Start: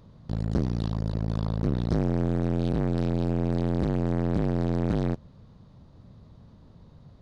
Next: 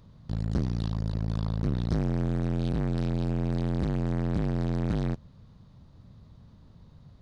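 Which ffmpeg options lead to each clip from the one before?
-af "equalizer=f=480:t=o:w=2.3:g=-5.5"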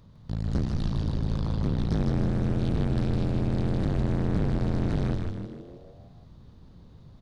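-filter_complex "[0:a]asplit=8[s0][s1][s2][s3][s4][s5][s6][s7];[s1]adelay=156,afreqshift=-120,volume=0.708[s8];[s2]adelay=312,afreqshift=-240,volume=0.367[s9];[s3]adelay=468,afreqshift=-360,volume=0.191[s10];[s4]adelay=624,afreqshift=-480,volume=0.1[s11];[s5]adelay=780,afreqshift=-600,volume=0.0519[s12];[s6]adelay=936,afreqshift=-720,volume=0.0269[s13];[s7]adelay=1092,afreqshift=-840,volume=0.014[s14];[s0][s8][s9][s10][s11][s12][s13][s14]amix=inputs=8:normalize=0"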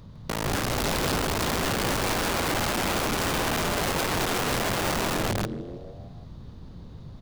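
-af "aeval=exprs='(mod(28.2*val(0)+1,2)-1)/28.2':c=same,volume=2.37"

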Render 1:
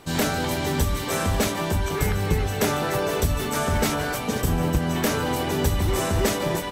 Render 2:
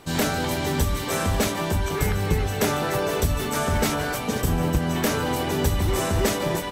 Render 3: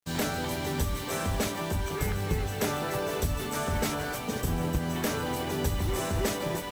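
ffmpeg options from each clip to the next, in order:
-af anull
-af "acrusher=bits=5:mix=0:aa=0.5,volume=0.473"

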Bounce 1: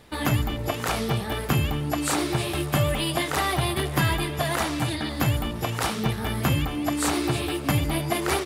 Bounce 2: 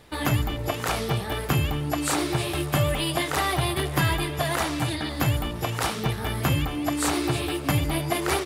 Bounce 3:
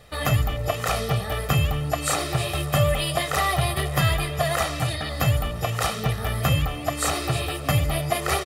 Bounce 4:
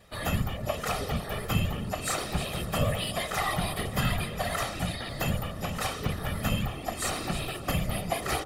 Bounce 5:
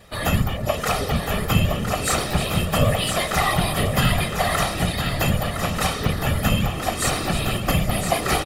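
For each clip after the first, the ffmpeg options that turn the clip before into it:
-af "equalizer=f=220:t=o:w=0.26:g=-5.5"
-af "aecho=1:1:1.6:0.67"
-af "afftfilt=real='hypot(re,im)*cos(2*PI*random(0))':imag='hypot(re,im)*sin(2*PI*random(1))':win_size=512:overlap=0.75,bandreject=f=48.86:t=h:w=4,bandreject=f=97.72:t=h:w=4,bandreject=f=146.58:t=h:w=4,bandreject=f=195.44:t=h:w=4,bandreject=f=244.3:t=h:w=4,bandreject=f=293.16:t=h:w=4,bandreject=f=342.02:t=h:w=4,bandreject=f=390.88:t=h:w=4,bandreject=f=439.74:t=h:w=4,bandreject=f=488.6:t=h:w=4,bandreject=f=537.46:t=h:w=4,bandreject=f=586.32:t=h:w=4,bandreject=f=635.18:t=h:w=4,bandreject=f=684.04:t=h:w=4,bandreject=f=732.9:t=h:w=4,bandreject=f=781.76:t=h:w=4,bandreject=f=830.62:t=h:w=4,bandreject=f=879.48:t=h:w=4,bandreject=f=928.34:t=h:w=4,bandreject=f=977.2:t=h:w=4,bandreject=f=1026.06:t=h:w=4,bandreject=f=1074.92:t=h:w=4,bandreject=f=1123.78:t=h:w=4,bandreject=f=1172.64:t=h:w=4,bandreject=f=1221.5:t=h:w=4,bandreject=f=1270.36:t=h:w=4,bandreject=f=1319.22:t=h:w=4,bandreject=f=1368.08:t=h:w=4,bandreject=f=1416.94:t=h:w=4,bandreject=f=1465.8:t=h:w=4,bandreject=f=1514.66:t=h:w=4"
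-af "aecho=1:1:1012:0.447,volume=2.51"

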